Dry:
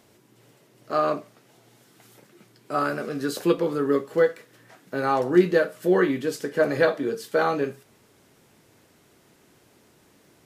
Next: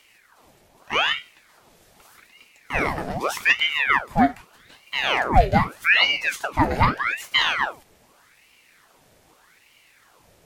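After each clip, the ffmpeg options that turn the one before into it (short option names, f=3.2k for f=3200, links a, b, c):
-af "equalizer=f=890:t=o:w=0.37:g=-7,aeval=exprs='val(0)*sin(2*PI*1400*n/s+1400*0.85/0.82*sin(2*PI*0.82*n/s))':c=same,volume=5dB"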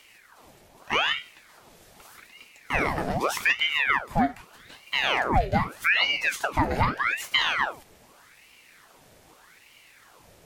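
-af "acompressor=threshold=-24dB:ratio=2.5,volume=2dB"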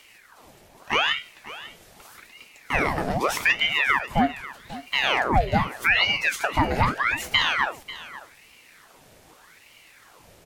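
-af "aecho=1:1:542:0.15,volume=2dB"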